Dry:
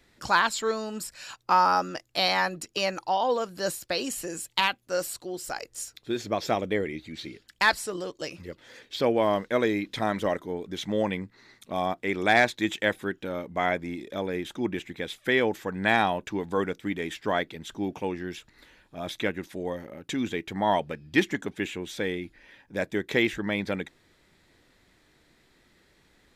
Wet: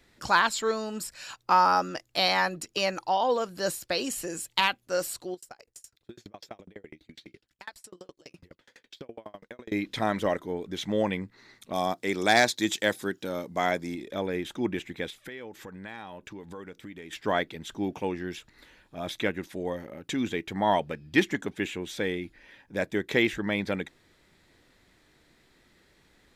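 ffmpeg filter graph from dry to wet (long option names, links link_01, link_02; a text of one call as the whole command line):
ffmpeg -i in.wav -filter_complex "[0:a]asettb=1/sr,asplit=3[link_01][link_02][link_03];[link_01]atrim=end=5.344[link_04];[link_02]atrim=start=5.34:end=9.72,asetpts=PTS-STARTPTS,afade=type=in:duration=0.004:curve=qsin,afade=type=out:start_time=4.376:duration=0.004:curve=qsin,acompressor=threshold=-37dB:ratio=2.5:attack=3.2:release=140:knee=1:detection=peak,aeval=exprs='val(0)*pow(10,-36*if(lt(mod(12*n/s,1),2*abs(12)/1000),1-mod(12*n/s,1)/(2*abs(12)/1000),(mod(12*n/s,1)-2*abs(12)/1000)/(1-2*abs(12)/1000))/20)':channel_layout=same[link_05];[link_03]atrim=start=9.716[link_06];[link_04][link_05]acrossfade=duration=0.004:curve1=hsin:curve2=qsin[link_07];[link_07][link_06]acrossfade=duration=0.004:curve1=qsin:curve2=hsin,asettb=1/sr,asplit=3[link_08][link_09][link_10];[link_08]atrim=end=11.734[link_11];[link_09]atrim=start=11.73:end=13.95,asetpts=PTS-STARTPTS,afade=type=in:duration=0.004:curve=qsin,afade=type=out:start_time=2.216:duration=0.004:curve=qsin,highpass=100,highshelf=frequency=3600:width_type=q:width=1.5:gain=8[link_12];[link_10]atrim=start=13.946[link_13];[link_11][link_12]acrossfade=duration=0.004:curve1=hsin:curve2=qsin[link_14];[link_14][link_13]acrossfade=duration=0.004:curve1=qsin:curve2=hsin,asettb=1/sr,asplit=3[link_15][link_16][link_17];[link_15]atrim=end=15.104[link_18];[link_16]atrim=start=15.1:end=17.13,asetpts=PTS-STARTPTS,afade=type=in:duration=0.004:curve=qsin,afade=type=out:start_time=2.026:duration=0.004:curve=qsin,bandreject=frequency=700:width=9.8,acompressor=threshold=-41dB:ratio=4:attack=3.2:release=140:knee=1:detection=peak[link_19];[link_17]atrim=start=17.126[link_20];[link_18][link_19]acrossfade=duration=0.004:curve1=hsin:curve2=qsin[link_21];[link_21][link_20]acrossfade=duration=0.004:curve1=qsin:curve2=hsin" out.wav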